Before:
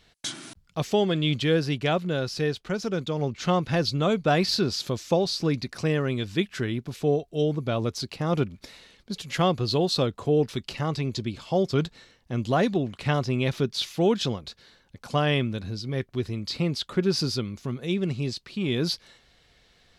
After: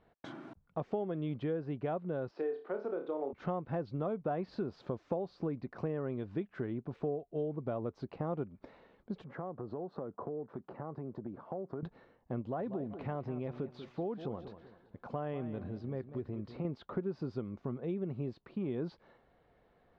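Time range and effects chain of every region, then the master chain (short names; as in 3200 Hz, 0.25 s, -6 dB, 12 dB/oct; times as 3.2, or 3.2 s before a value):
2.31–3.33 HPF 290 Hz 24 dB/oct + air absorption 97 m + flutter echo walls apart 5 m, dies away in 0.29 s
9.24–11.83 HPF 140 Hz + band shelf 4600 Hz -16 dB 2.4 oct + compressor 8:1, threshold -33 dBFS
12.41–16.65 compressor 2:1, threshold -32 dBFS + warbling echo 0.192 s, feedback 34%, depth 80 cents, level -13 dB
whole clip: Chebyshev low-pass 870 Hz, order 2; low shelf 130 Hz -10.5 dB; compressor 4:1, threshold -34 dBFS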